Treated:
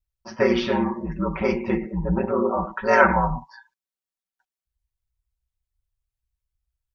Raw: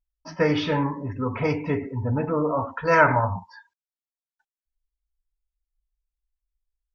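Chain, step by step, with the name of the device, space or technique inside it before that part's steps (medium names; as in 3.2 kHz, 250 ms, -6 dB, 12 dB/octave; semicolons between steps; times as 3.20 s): ring-modulated robot voice (ring modulator 59 Hz; comb 5.3 ms, depth 74%); trim +2 dB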